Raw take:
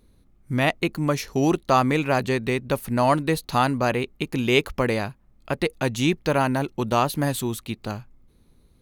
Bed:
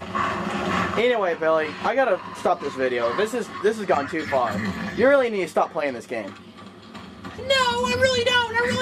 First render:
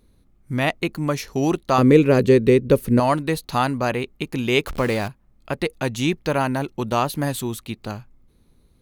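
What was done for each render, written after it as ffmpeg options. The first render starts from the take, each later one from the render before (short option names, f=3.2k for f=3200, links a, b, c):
-filter_complex "[0:a]asettb=1/sr,asplit=3[a][b][c];[a]atrim=end=1.784[d];[b]atrim=start=1.78:end=3,asetpts=PTS-STARTPTS,afade=t=in:d=0.004:c=qsin,afade=t=out:st=1.216:d=0.004:c=qsin,lowshelf=f=590:t=q:w=3:g=7[e];[c]atrim=start=2.996[f];[d][e]acrossfade=d=0.004:c1=hsin:c2=qsin[g];[g][f]acrossfade=d=0.004:c1=qsin:c2=hsin,asettb=1/sr,asplit=3[h][i][j];[h]atrim=end=4.674[k];[i]atrim=start=4.67:end=5.08,asetpts=PTS-STARTPTS,afade=t=in:d=0.004:c=qsin,afade=t=out:st=0.406:d=0.004:c=qsin,aeval=exprs='val(0)+0.5*0.0355*sgn(val(0))':c=same[l];[j]atrim=start=5.076[m];[k][l]acrossfade=d=0.004:c1=hsin:c2=qsin[n];[n][m]acrossfade=d=0.004:c1=qsin:c2=hsin"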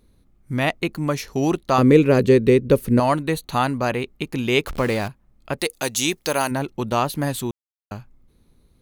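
-filter_complex "[0:a]asettb=1/sr,asplit=3[a][b][c];[a]atrim=end=3.134[d];[b]atrim=start=3.13:end=3.67,asetpts=PTS-STARTPTS,afade=t=in:d=0.004:c=qsin,afade=t=out:st=0.536:d=0.004:c=qsin,asuperstop=centerf=5100:order=4:qfactor=5.5[e];[c]atrim=start=3.666[f];[d][e]acrossfade=d=0.004:c1=hsin:c2=qsin[g];[g][f]acrossfade=d=0.004:c1=qsin:c2=hsin,asplit=3[h][i][j];[h]afade=t=out:st=5.58:d=0.02[k];[i]bass=f=250:g=-10,treble=f=4k:g=14,afade=t=in:st=5.58:d=0.02,afade=t=out:st=6.5:d=0.02[l];[j]afade=t=in:st=6.5:d=0.02[m];[k][l][m]amix=inputs=3:normalize=0,asplit=3[n][o][p];[n]atrim=end=7.51,asetpts=PTS-STARTPTS,afade=t=out:st=7.506:d=0.004:c=hsin[q];[o]atrim=start=7.51:end=7.91,asetpts=PTS-STARTPTS,volume=0[r];[p]atrim=start=7.91,asetpts=PTS-STARTPTS,afade=t=in:d=0.004:c=hsin[s];[q][r][s]concat=n=3:v=0:a=1"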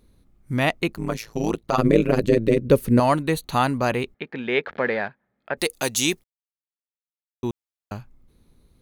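-filter_complex "[0:a]asettb=1/sr,asplit=3[a][b][c];[a]atrim=end=0.934[d];[b]atrim=start=0.93:end=2.61,asetpts=PTS-STARTPTS,afade=t=in:d=0.004:c=qsin,afade=t=out:st=1.676:d=0.004:c=qsin,tremolo=f=110:d=0.974[e];[c]atrim=start=2.606[f];[d][e]acrossfade=d=0.004:c1=hsin:c2=qsin[g];[g][f]acrossfade=d=0.004:c1=qsin:c2=hsin,asettb=1/sr,asplit=3[h][i][j];[h]atrim=end=4.144[k];[i]atrim=start=4.14:end=5.57,asetpts=PTS-STARTPTS,afade=t=in:d=0.004:c=qsin,afade=t=out:st=1.426:d=0.004:c=qsin,highpass=270,equalizer=f=310:t=q:w=4:g=-9,equalizer=f=1.1k:t=q:w=4:g=-6,equalizer=f=1.7k:t=q:w=4:g=8,equalizer=f=2.8k:t=q:w=4:g=-8,lowpass=f=3.2k:w=0.5412,lowpass=f=3.2k:w=1.3066[l];[j]atrim=start=5.566[m];[k][l]acrossfade=d=0.004:c1=hsin:c2=qsin[n];[n][m]acrossfade=d=0.004:c1=qsin:c2=hsin,asplit=3[o][p][q];[o]atrim=end=6.24,asetpts=PTS-STARTPTS,afade=t=out:st=6.236:d=0.004:c=hsin[r];[p]atrim=start=6.24:end=7.43,asetpts=PTS-STARTPTS,volume=0[s];[q]atrim=start=7.43,asetpts=PTS-STARTPTS,afade=t=in:d=0.004:c=hsin[t];[r][s][t]concat=n=3:v=0:a=1"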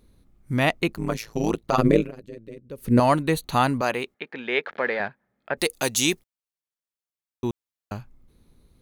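-filter_complex "[0:a]asettb=1/sr,asplit=3[a][b][c];[a]atrim=end=3.814[d];[b]atrim=start=3.81:end=5,asetpts=PTS-STARTPTS,afade=t=in:d=0.004:c=qsin,afade=t=out:st=1.186:d=0.004:c=qsin,highpass=f=460:p=1[e];[c]atrim=start=4.996[f];[d][e]acrossfade=d=0.004:c1=hsin:c2=qsin[g];[g][f]acrossfade=d=0.004:c1=qsin:c2=hsin,asplit=3[h][i][j];[h]atrim=end=2.11,asetpts=PTS-STARTPTS,afade=t=out:st=1.86:d=0.25:c=qsin:silence=0.0794328[k];[i]atrim=start=2.11:end=2.77,asetpts=PTS-STARTPTS,volume=-22dB[l];[j]atrim=start=2.77,asetpts=PTS-STARTPTS,afade=t=in:d=0.25:c=qsin:silence=0.0794328[m];[k][l][m]concat=n=3:v=0:a=1"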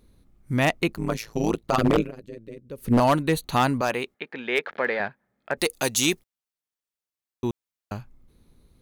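-af "aeval=exprs='0.266*(abs(mod(val(0)/0.266+3,4)-2)-1)':c=same"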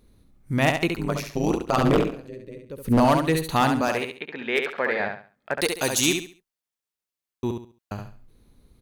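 -af "aecho=1:1:69|138|207|276:0.531|0.149|0.0416|0.0117"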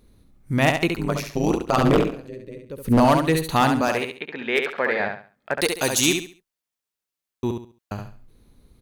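-af "volume=2dB"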